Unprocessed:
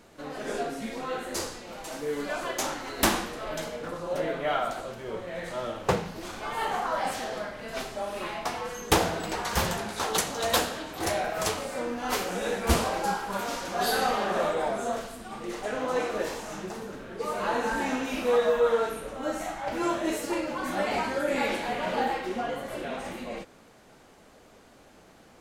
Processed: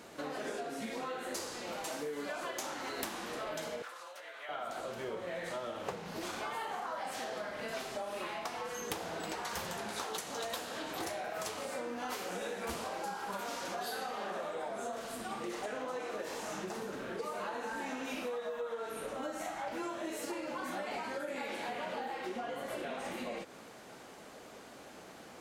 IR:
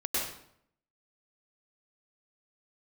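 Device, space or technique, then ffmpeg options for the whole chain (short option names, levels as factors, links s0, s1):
serial compression, leveller first: -filter_complex "[0:a]highpass=f=210:p=1,acompressor=threshold=0.0282:ratio=2,acompressor=threshold=0.00891:ratio=6,asettb=1/sr,asplit=3[s0][s1][s2];[s0]atrim=end=3.824[s3];[s1]atrim=start=3.82:end=4.49,asetpts=PTS-STARTPTS,afade=t=in:d=0.004:c=qsin,afade=t=out:st=0.666:d=0.004:c=qsin,highpass=1200[s4];[s2]atrim=start=4.486[s5];[s3][s4]acrossfade=d=0.004:c1=hsin:c2=qsin[s6];[s6][s5]acrossfade=d=0.004:c1=qsin:c2=hsin,volume=1.58"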